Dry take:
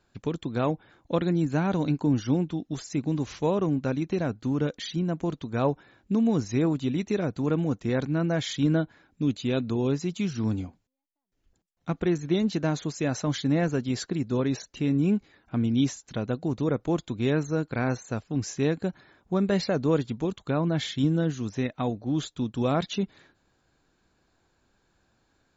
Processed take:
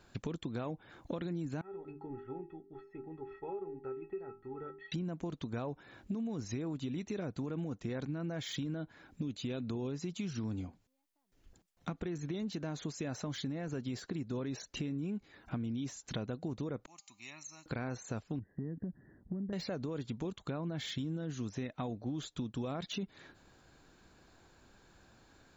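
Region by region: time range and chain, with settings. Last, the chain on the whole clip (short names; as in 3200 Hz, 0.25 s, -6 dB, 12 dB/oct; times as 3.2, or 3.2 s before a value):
1.61–4.92 LPF 1900 Hz 24 dB/oct + notches 50/100/150/200/250/300/350/400 Hz + metallic resonator 390 Hz, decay 0.28 s, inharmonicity 0.03
16.86–17.66 differentiator + fixed phaser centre 2300 Hz, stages 8 + resonator 200 Hz, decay 0.98 s, mix 50%
18.39–19.53 EQ curve 230 Hz 0 dB, 1300 Hz -25 dB, 2500 Hz -3 dB + compressor 4:1, threshold -31 dBFS + brick-wall FIR low-pass 2000 Hz
whole clip: de-esser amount 95%; limiter -22 dBFS; compressor 4:1, threshold -45 dBFS; gain +6.5 dB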